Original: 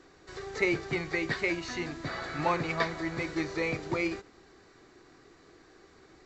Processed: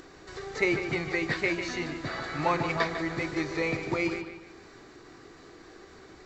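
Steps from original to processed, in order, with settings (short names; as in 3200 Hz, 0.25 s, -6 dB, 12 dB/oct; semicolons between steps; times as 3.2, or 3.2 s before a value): upward compressor, threshold -45 dBFS; analogue delay 0.149 s, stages 4096, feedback 39%, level -9 dB; gain +1.5 dB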